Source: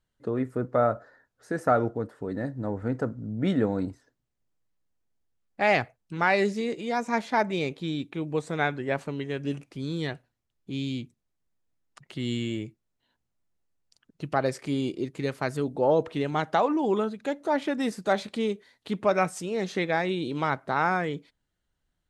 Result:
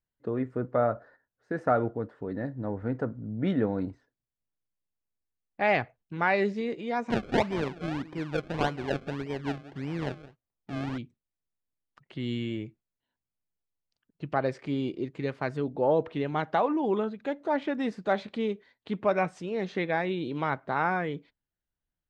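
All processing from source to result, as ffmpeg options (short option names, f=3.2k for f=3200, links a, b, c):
-filter_complex "[0:a]asettb=1/sr,asplit=3[a][b][c];[a]atrim=end=7.104[d];[b]atrim=start=7.1:end=10.98,asetpts=PTS-STARTPTS,afade=t=in:d=0.004:c=qsin,afade=t=out:st=3.876:d=0.004:c=qsin,aecho=1:1:182:0.15,atrim=end_sample=171108,acrusher=samples=32:mix=1:aa=0.000001:lfo=1:lforange=32:lforate=1.7[e];[c]atrim=start=10.976[f];[d][e]acrossfade=d=0.004:c1=hsin:c2=qsin[g];[g][f]acrossfade=d=0.004:c1=qsin:c2=hsin,agate=range=-9dB:threshold=-51dB:ratio=16:detection=peak,lowpass=3.3k,bandreject=f=1.3k:w=28,volume=-2dB"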